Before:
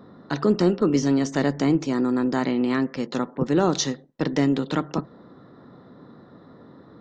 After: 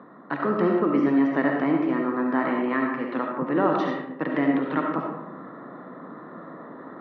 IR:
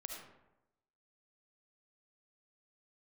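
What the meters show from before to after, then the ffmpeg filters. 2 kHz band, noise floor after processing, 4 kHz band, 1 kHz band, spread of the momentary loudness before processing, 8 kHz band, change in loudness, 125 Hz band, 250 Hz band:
+3.5 dB, -43 dBFS, -12.5 dB, +3.5 dB, 8 LU, n/a, -1.0 dB, -8.0 dB, -1.0 dB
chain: -filter_complex "[0:a]areverse,acompressor=mode=upward:threshold=-30dB:ratio=2.5,areverse,highpass=f=180:w=0.5412,highpass=f=180:w=1.3066,equalizer=f=210:t=q:w=4:g=-5,equalizer=f=410:t=q:w=4:g=-4,equalizer=f=1.1k:t=q:w=4:g=6,equalizer=f=1.8k:t=q:w=4:g=4,lowpass=f=2.5k:w=0.5412,lowpass=f=2.5k:w=1.3066[a];[1:a]atrim=start_sample=2205[b];[a][b]afir=irnorm=-1:irlink=0,volume=3.5dB"

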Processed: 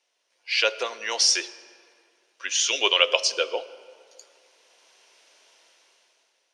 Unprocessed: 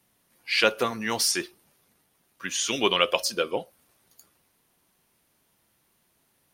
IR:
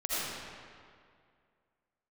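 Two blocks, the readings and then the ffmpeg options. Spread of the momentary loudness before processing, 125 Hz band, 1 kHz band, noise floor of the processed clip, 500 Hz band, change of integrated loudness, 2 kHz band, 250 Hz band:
13 LU, under -30 dB, -2.0 dB, -72 dBFS, -1.0 dB, +3.0 dB, +2.0 dB, -11.5 dB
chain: -filter_complex "[0:a]dynaudnorm=f=210:g=9:m=16.5dB,highpass=f=480:w=0.5412,highpass=f=480:w=1.3066,equalizer=f=790:t=q:w=4:g=-5,equalizer=f=1.2k:t=q:w=4:g=-7,equalizer=f=1.8k:t=q:w=4:g=-3,equalizer=f=2.8k:t=q:w=4:g=3,equalizer=f=5.7k:t=q:w=4:g=5,lowpass=f=7k:w=0.5412,lowpass=f=7k:w=1.3066,asplit=2[a][b];[1:a]atrim=start_sample=2205,lowshelf=f=460:g=6.5[c];[b][c]afir=irnorm=-1:irlink=0,volume=-25.5dB[d];[a][d]amix=inputs=2:normalize=0,volume=-1.5dB"

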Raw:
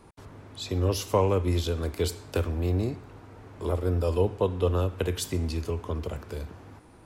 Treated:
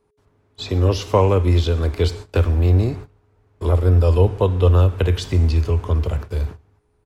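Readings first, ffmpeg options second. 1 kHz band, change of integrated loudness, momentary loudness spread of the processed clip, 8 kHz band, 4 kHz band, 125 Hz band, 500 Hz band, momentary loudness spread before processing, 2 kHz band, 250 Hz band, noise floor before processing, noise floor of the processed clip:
+7.0 dB, +10.0 dB, 10 LU, n/a, +6.0 dB, +12.5 dB, +6.5 dB, 17 LU, +7.0 dB, +6.5 dB, -52 dBFS, -63 dBFS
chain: -filter_complex "[0:a]aeval=exprs='val(0)+0.00282*sin(2*PI*420*n/s)':c=same,agate=range=-23dB:threshold=-40dB:ratio=16:detection=peak,asubboost=boost=3:cutoff=120,acrossover=split=5500[a][b];[b]acompressor=threshold=-58dB:ratio=4:attack=1:release=60[c];[a][c]amix=inputs=2:normalize=0,asplit=2[d][e];[e]adelay=139.9,volume=-29dB,highshelf=f=4k:g=-3.15[f];[d][f]amix=inputs=2:normalize=0,volume=7.5dB"

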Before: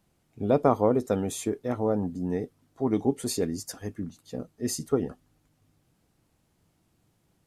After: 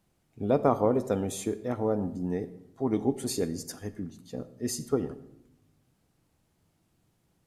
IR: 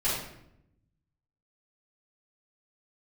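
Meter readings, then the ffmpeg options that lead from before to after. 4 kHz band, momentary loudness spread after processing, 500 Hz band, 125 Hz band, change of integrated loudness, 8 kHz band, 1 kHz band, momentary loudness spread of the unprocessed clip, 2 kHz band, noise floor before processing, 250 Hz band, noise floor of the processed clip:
-2.0 dB, 14 LU, -1.5 dB, -1.5 dB, -1.5 dB, -2.0 dB, -2.0 dB, 14 LU, -2.0 dB, -71 dBFS, -2.0 dB, -72 dBFS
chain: -filter_complex "[0:a]asplit=2[a][b];[1:a]atrim=start_sample=2205,adelay=39[c];[b][c]afir=irnorm=-1:irlink=0,volume=-24dB[d];[a][d]amix=inputs=2:normalize=0,volume=-2dB"

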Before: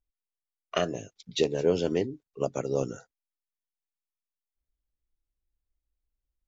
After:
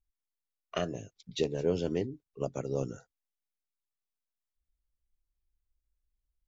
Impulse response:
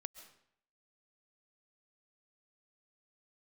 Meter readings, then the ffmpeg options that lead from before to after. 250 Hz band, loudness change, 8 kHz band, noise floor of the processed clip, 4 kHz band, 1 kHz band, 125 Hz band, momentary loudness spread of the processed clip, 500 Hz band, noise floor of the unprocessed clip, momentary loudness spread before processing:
-3.5 dB, -5.0 dB, n/a, under -85 dBFS, -6.5 dB, -6.0 dB, -1.0 dB, 11 LU, -5.0 dB, under -85 dBFS, 11 LU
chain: -af "lowshelf=f=180:g=9,volume=-6.5dB"

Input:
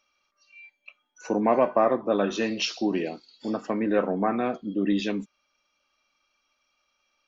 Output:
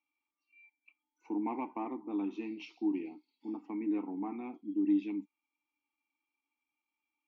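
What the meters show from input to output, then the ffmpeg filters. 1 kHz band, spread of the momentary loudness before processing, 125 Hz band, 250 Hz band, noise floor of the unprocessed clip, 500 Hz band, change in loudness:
-15.0 dB, 10 LU, under -15 dB, -6.5 dB, -75 dBFS, -19.5 dB, -10.5 dB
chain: -filter_complex "[0:a]aeval=exprs='0.335*(cos(1*acos(clip(val(0)/0.335,-1,1)))-cos(1*PI/2))+0.0266*(cos(3*acos(clip(val(0)/0.335,-1,1)))-cos(3*PI/2))':c=same,asplit=3[a][b][c];[a]bandpass=f=300:t=q:w=8,volume=0dB[d];[b]bandpass=f=870:t=q:w=8,volume=-6dB[e];[c]bandpass=f=2.24k:t=q:w=8,volume=-9dB[f];[d][e][f]amix=inputs=3:normalize=0"

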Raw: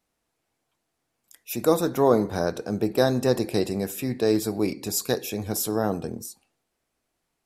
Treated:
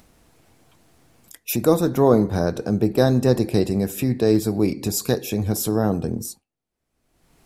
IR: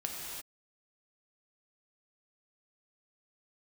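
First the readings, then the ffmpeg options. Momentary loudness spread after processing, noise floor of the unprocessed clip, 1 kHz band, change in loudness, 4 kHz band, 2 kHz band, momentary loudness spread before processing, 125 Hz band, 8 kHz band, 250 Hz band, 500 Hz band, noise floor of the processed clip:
8 LU, -79 dBFS, +1.0 dB, +4.0 dB, +1.0 dB, +1.0 dB, 8 LU, +9.0 dB, +2.0 dB, +5.5 dB, +3.0 dB, -79 dBFS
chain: -af "agate=range=-33dB:threshold=-37dB:ratio=3:detection=peak,lowshelf=f=280:g=10.5,acompressor=mode=upward:threshold=-18dB:ratio=2.5"

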